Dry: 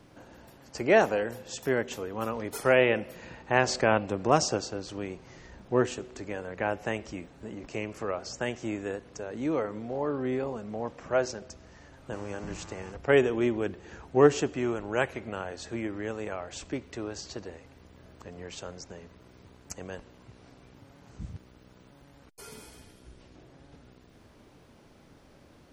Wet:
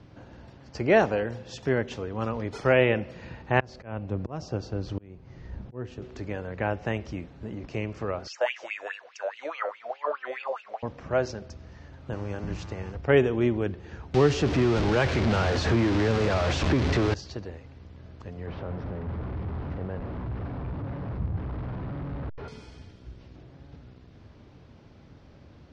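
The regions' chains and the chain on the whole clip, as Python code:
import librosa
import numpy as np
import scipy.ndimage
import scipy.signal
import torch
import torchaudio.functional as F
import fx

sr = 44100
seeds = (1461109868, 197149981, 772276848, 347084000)

y = fx.chain(x, sr, fx.tilt_eq(slope=-1.5),
    fx.auto_swell(attack_ms=631.0), at=(3.6, 6.02))
y = fx.chain(y, sr, fx.peak_eq(hz=180.0, db=-15.0, octaves=2.0),
    fx.filter_lfo_highpass(shape='sine', hz=4.8, low_hz=540.0, high_hz=2800.0, q=7.5), at=(8.27, 10.83))
y = fx.chain(y, sr, fx.zero_step(step_db=-26.0),
    fx.band_squash(depth_pct=70), at=(14.14, 17.14))
y = fx.chain(y, sr, fx.delta_mod(bps=32000, step_db=-36.5),
    fx.lowpass(hz=1200.0, slope=12),
    fx.env_flatten(amount_pct=50), at=(18.47, 22.48))
y = scipy.signal.sosfilt(scipy.signal.butter(4, 5500.0, 'lowpass', fs=sr, output='sos'), y)
y = fx.peak_eq(y, sr, hz=86.0, db=10.5, octaves=2.1)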